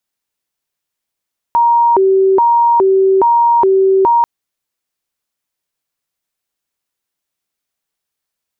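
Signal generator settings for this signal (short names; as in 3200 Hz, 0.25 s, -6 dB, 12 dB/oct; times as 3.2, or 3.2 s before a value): siren hi-lo 384–940 Hz 1.2/s sine -7 dBFS 2.69 s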